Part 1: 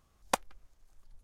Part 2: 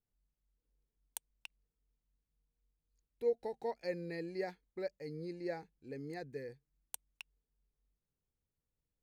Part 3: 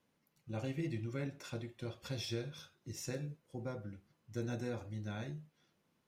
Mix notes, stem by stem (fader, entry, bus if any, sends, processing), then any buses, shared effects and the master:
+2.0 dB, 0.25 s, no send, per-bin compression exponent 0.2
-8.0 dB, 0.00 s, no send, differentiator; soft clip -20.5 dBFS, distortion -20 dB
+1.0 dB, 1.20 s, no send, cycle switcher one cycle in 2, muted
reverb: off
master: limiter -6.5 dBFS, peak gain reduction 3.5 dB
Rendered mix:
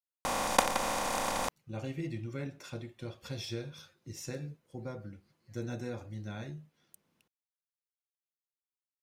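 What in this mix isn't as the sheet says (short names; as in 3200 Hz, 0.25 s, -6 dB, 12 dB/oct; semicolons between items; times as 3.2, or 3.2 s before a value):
stem 2 -8.0 dB -> -14.5 dB; stem 3: missing cycle switcher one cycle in 2, muted; master: missing limiter -6.5 dBFS, peak gain reduction 3.5 dB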